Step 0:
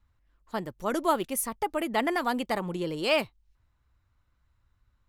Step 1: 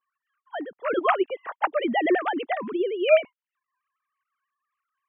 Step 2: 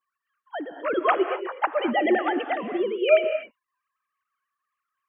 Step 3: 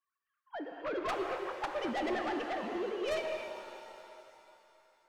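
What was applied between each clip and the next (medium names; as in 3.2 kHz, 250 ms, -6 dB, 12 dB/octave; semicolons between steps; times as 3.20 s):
formants replaced by sine waves; trim +4.5 dB
gated-style reverb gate 270 ms rising, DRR 8 dB
tracing distortion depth 0.084 ms; saturation -23 dBFS, distortion -8 dB; pitch-shifted reverb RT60 2.9 s, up +7 st, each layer -8 dB, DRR 6 dB; trim -8 dB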